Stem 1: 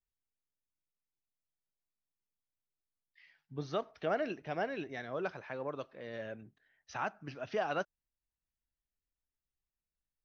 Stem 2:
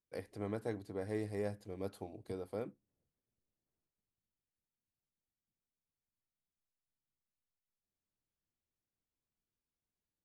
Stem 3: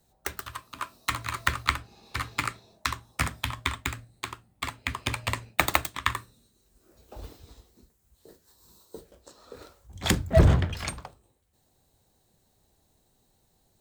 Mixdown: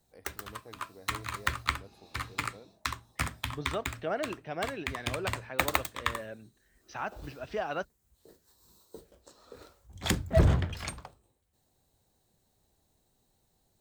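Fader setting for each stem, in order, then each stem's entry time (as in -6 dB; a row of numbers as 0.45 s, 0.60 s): +0.5 dB, -11.5 dB, -4.5 dB; 0.00 s, 0.00 s, 0.00 s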